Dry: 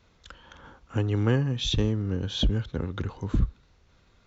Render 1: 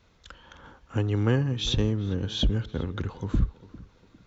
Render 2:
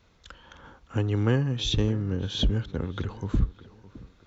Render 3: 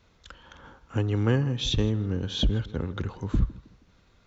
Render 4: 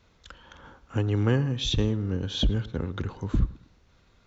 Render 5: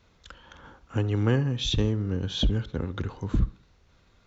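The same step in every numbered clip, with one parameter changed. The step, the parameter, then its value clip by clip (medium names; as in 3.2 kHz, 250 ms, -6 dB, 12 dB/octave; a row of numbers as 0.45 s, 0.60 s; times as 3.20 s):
tape echo, time: 401 ms, 611 ms, 160 ms, 108 ms, 68 ms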